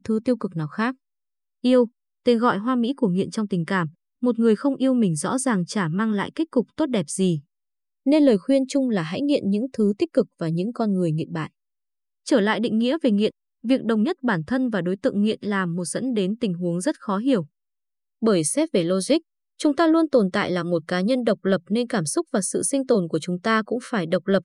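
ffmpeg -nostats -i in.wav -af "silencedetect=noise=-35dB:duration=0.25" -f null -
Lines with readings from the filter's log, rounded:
silence_start: 0.92
silence_end: 1.64 | silence_duration: 0.73
silence_start: 1.87
silence_end: 2.26 | silence_duration: 0.39
silence_start: 3.88
silence_end: 4.23 | silence_duration: 0.34
silence_start: 7.39
silence_end: 8.06 | silence_duration: 0.67
silence_start: 11.47
silence_end: 12.27 | silence_duration: 0.80
silence_start: 13.30
silence_end: 13.64 | silence_duration: 0.34
silence_start: 17.44
silence_end: 18.22 | silence_duration: 0.79
silence_start: 19.18
silence_end: 19.60 | silence_duration: 0.42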